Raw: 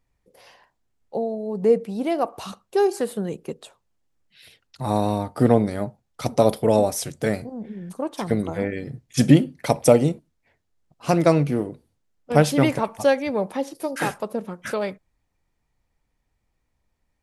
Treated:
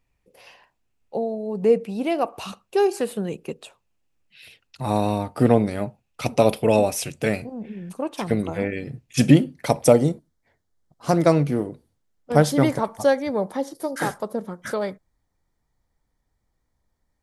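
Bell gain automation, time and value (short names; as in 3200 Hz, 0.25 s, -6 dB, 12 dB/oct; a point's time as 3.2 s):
bell 2600 Hz 0.31 oct
+8.5 dB
from 5.77 s +14.5 dB
from 7.81 s +8.5 dB
from 9.31 s -1 dB
from 9.93 s -12.5 dB
from 11.21 s -3.5 dB
from 12.32 s -13 dB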